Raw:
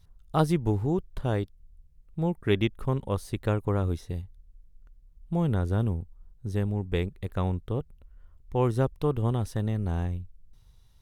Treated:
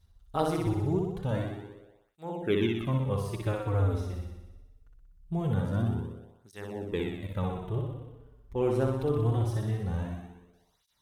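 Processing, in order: flutter echo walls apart 10.5 m, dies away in 1.1 s; tape flanging out of phase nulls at 0.23 Hz, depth 7 ms; gain -2 dB

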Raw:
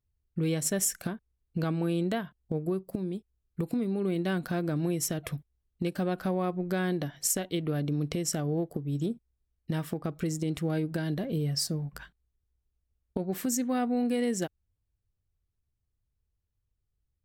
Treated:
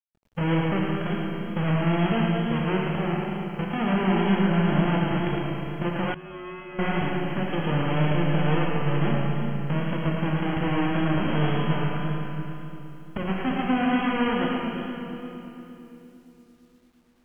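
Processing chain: half-waves squared off; limiter -22.5 dBFS, peak gain reduction 7.5 dB; brick-wall FIR low-pass 3300 Hz; notches 60/120/180/240/300/360/420/480 Hz; split-band echo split 400 Hz, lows 0.344 s, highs 0.111 s, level -5 dB; Schroeder reverb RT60 3 s, combs from 31 ms, DRR 0 dB; bit-crush 11-bit; 6.14–6.79 resonator 52 Hz, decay 0.58 s, harmonics odd, mix 100%; wow and flutter 22 cents

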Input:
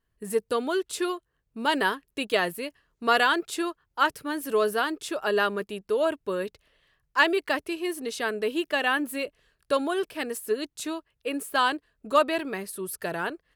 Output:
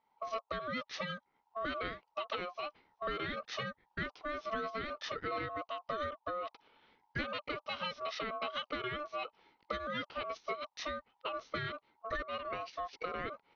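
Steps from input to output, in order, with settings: dynamic EQ 1100 Hz, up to -5 dB, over -36 dBFS, Q 1.1; compressor 6:1, threshold -35 dBFS, peak gain reduction 16 dB; formant shift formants -5 st; downsampling 11025 Hz; ring modulator 890 Hz; gain +2.5 dB

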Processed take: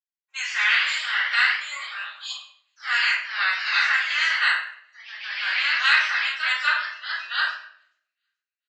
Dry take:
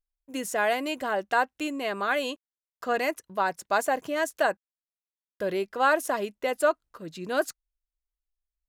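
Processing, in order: spectral limiter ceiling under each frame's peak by 24 dB; 1.62–2.31 negative-ratio compressor -34 dBFS, ratio -0.5; ladder high-pass 1400 Hz, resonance 45%; thin delay 0.429 s, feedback 32%, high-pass 1800 Hz, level -22.5 dB; spectral noise reduction 21 dB; shoebox room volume 130 m³, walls mixed, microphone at 3.5 m; echoes that change speed 0.129 s, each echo +1 st, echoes 3, each echo -6 dB; downsampling 16000 Hz

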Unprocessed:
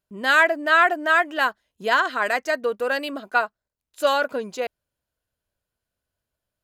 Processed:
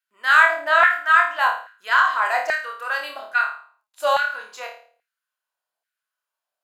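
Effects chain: flutter echo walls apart 4.7 m, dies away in 0.43 s; LFO high-pass saw down 1.2 Hz 700–1700 Hz; gain -4 dB

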